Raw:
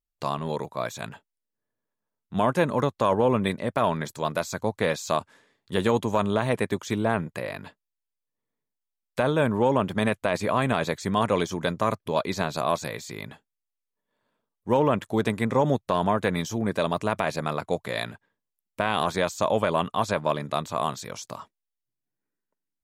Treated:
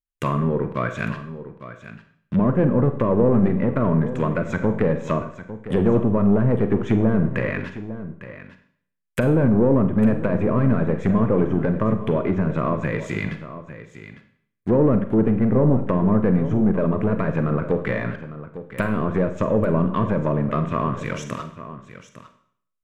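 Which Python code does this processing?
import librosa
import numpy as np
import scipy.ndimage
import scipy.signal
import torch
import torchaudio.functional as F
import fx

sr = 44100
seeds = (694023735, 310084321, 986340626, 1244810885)

y = fx.fixed_phaser(x, sr, hz=1900.0, stages=4)
y = fx.leveller(y, sr, passes=3)
y = fx.env_lowpass_down(y, sr, base_hz=740.0, full_db=-18.0)
y = y + 10.0 ** (-13.5 / 20.0) * np.pad(y, (int(853 * sr / 1000.0), 0))[:len(y)]
y = fx.rev_schroeder(y, sr, rt60_s=0.59, comb_ms=33, drr_db=8.0)
y = y * 10.0 ** (1.5 / 20.0)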